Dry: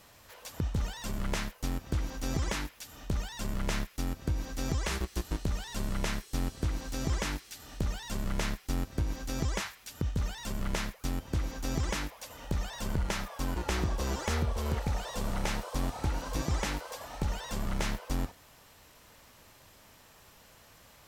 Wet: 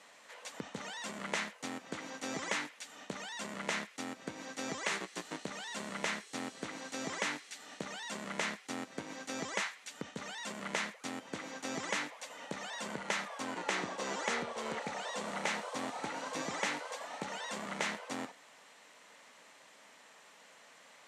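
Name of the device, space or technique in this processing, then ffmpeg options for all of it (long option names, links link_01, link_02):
television speaker: -filter_complex "[0:a]highpass=frequency=230:width=0.5412,highpass=frequency=230:width=1.3066,equalizer=frequency=240:width_type=q:width=4:gain=-3,equalizer=frequency=350:width_type=q:width=4:gain=-8,equalizer=frequency=2000:width_type=q:width=4:gain=5,equalizer=frequency=5100:width_type=q:width=4:gain=-5,lowpass=frequency=8900:width=0.5412,lowpass=frequency=8900:width=1.3066,asettb=1/sr,asplit=3[link_01][link_02][link_03];[link_01]atrim=end=13.424[link_04];[link_02]atrim=start=13.42:end=15.28,asetpts=PTS-STARTPTS,afade=type=in:duration=0.004:curve=qsin,afade=type=out:start_time=1.856:duration=0.004:curve=qsin,lowpass=11000[link_05];[link_03]atrim=start=15.276[link_06];[link_04][link_05]acrossfade=duration=0.004:curve1=hsin:curve2=qsin[link_07];[link_07][link_06]acrossfade=duration=0.004:curve1=qsin:curve2=hsin"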